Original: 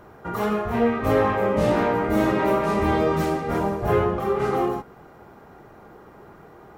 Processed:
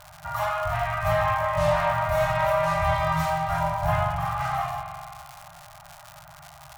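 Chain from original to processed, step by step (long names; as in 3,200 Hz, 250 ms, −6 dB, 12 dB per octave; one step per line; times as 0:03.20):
spring reverb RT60 2.4 s, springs 43 ms, chirp 20 ms, DRR 4 dB
surface crackle 200 per second −31 dBFS
brick-wall band-stop 170–580 Hz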